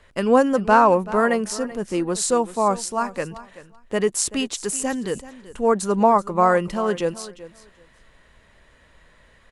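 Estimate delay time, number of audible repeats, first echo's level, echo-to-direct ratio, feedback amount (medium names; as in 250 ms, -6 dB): 383 ms, 2, -16.5 dB, -16.5 dB, 18%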